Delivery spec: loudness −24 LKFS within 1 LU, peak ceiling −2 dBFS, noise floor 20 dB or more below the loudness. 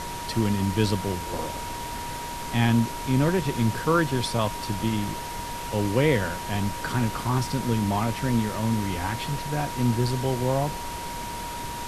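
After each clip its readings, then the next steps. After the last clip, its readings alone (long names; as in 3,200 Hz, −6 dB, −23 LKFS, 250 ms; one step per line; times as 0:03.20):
interfering tone 950 Hz; level of the tone −34 dBFS; background noise floor −34 dBFS; target noise floor −47 dBFS; integrated loudness −26.5 LKFS; sample peak −8.5 dBFS; target loudness −24.0 LKFS
→ notch filter 950 Hz, Q 30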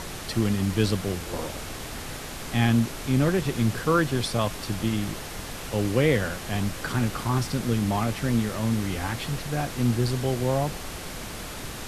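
interfering tone none found; background noise floor −37 dBFS; target noise floor −47 dBFS
→ noise reduction from a noise print 10 dB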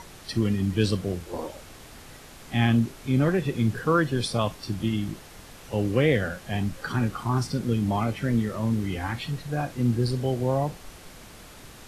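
background noise floor −47 dBFS; integrated loudness −26.5 LKFS; sample peak −9.5 dBFS; target loudness −24.0 LKFS
→ level +2.5 dB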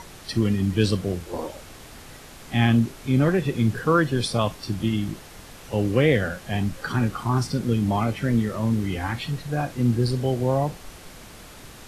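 integrated loudness −24.0 LKFS; sample peak −7.0 dBFS; background noise floor −44 dBFS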